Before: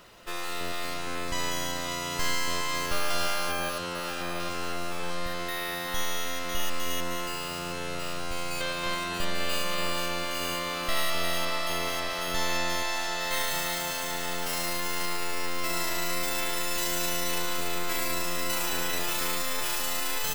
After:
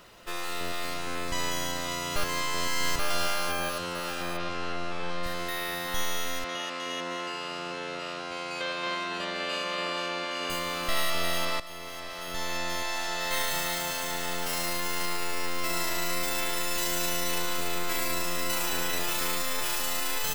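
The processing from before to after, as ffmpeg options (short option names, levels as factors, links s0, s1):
-filter_complex "[0:a]asplit=3[s0][s1][s2];[s0]afade=t=out:st=4.36:d=0.02[s3];[s1]lowpass=4500,afade=t=in:st=4.36:d=0.02,afade=t=out:st=5.22:d=0.02[s4];[s2]afade=t=in:st=5.22:d=0.02[s5];[s3][s4][s5]amix=inputs=3:normalize=0,asettb=1/sr,asplit=3[s6][s7][s8];[s6]atrim=end=6.444[s9];[s7]atrim=start=6.44:end=10.5,asetpts=PTS-STARTPTS,afade=t=in:d=0.004:c=qsin,afade=t=out:st=4.056:d=0.004:c=qsin,highpass=230,lowpass=4800[s10];[s8]atrim=start=10.496[s11];[s9][s10]acrossfade=d=0.004:c1=hsin:c2=qsin[s12];[s12][s11]acrossfade=d=0.004:c1=qsin:c2=hsin,asplit=4[s13][s14][s15][s16];[s13]atrim=end=2.162[s17];[s14]atrim=start=2.158:end=2.992,asetpts=PTS-STARTPTS,areverse[s18];[s15]atrim=start=2.988:end=11.6,asetpts=PTS-STARTPTS,afade=t=out:st=8.608:d=0.004:c=hsin:silence=0.199526[s19];[s16]atrim=start=11.6,asetpts=PTS-STARTPTS,afade=t=in:d=1.67:silence=0.199526[s20];[s17][s18]acrossfade=d=0.004:c1=hsin:c2=hsin[s21];[s19][s20]concat=n=2:v=0:a=1[s22];[s21][s22]acrossfade=d=0.004:c1=hsin:c2=hsin"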